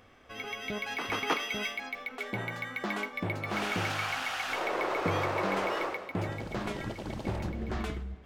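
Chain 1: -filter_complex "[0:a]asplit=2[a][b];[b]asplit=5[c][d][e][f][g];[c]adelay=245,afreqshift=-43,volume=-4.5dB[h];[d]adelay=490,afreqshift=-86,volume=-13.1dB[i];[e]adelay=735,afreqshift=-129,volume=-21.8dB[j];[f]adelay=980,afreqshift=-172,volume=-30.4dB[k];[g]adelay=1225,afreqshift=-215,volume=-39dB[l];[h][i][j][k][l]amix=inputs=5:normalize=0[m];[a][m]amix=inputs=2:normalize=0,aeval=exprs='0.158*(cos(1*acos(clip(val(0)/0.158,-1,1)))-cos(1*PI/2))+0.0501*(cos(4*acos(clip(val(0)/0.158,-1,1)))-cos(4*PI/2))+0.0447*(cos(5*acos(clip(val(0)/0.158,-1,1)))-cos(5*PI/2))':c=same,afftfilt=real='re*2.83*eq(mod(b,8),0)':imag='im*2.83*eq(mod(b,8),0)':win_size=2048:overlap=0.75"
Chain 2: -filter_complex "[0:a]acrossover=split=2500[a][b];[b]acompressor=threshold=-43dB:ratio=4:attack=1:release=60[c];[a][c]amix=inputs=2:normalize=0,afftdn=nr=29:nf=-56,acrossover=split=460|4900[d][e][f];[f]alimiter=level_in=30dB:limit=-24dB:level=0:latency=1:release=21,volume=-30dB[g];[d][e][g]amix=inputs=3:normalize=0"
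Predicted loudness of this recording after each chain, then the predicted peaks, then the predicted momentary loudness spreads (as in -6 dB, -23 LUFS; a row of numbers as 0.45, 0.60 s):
-28.0, -34.0 LUFS; -13.0, -15.5 dBFS; 6, 8 LU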